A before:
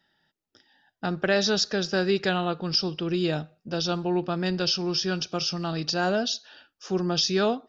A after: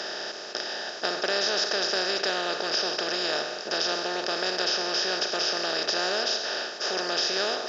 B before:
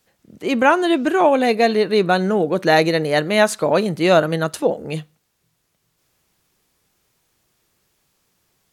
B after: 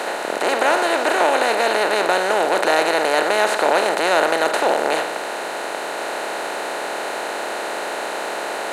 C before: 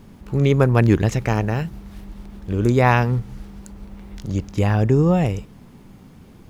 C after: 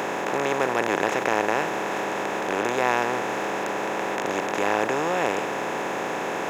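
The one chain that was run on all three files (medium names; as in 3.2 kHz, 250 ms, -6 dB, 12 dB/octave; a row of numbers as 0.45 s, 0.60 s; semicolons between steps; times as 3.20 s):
spectral levelling over time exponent 0.2; high-pass 460 Hz 12 dB/octave; trim -8 dB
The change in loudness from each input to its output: 0.0 LU, -2.5 LU, -6.0 LU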